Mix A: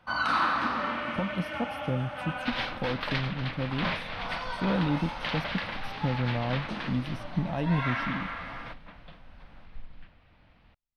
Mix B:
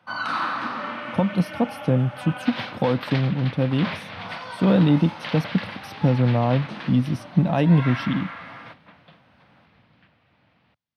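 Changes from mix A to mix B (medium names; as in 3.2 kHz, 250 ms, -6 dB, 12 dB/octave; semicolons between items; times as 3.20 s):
speech +10.5 dB; master: add high-pass 100 Hz 24 dB/octave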